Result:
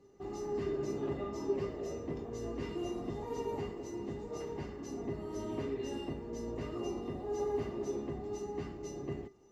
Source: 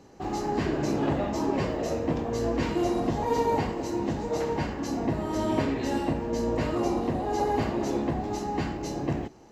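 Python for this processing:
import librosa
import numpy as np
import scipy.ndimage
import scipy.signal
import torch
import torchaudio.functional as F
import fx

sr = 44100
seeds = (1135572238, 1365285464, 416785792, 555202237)

y = fx.low_shelf(x, sr, hz=440.0, db=7.0)
y = fx.comb_fb(y, sr, f0_hz=400.0, decay_s=0.19, harmonics='odd', damping=0.0, mix_pct=90)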